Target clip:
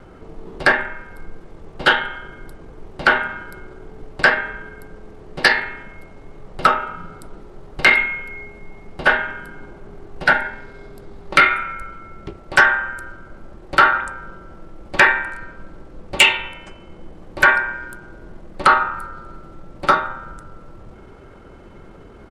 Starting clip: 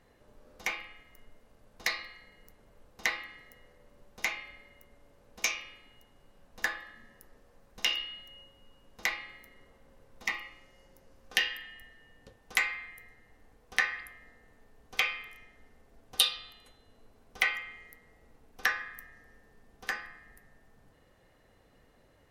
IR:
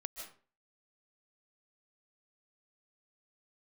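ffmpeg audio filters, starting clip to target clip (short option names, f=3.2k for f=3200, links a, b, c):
-af "lowpass=f=2.2k:p=1,apsyclip=26.5dB,asetrate=33038,aresample=44100,atempo=1.33484,volume=-4dB"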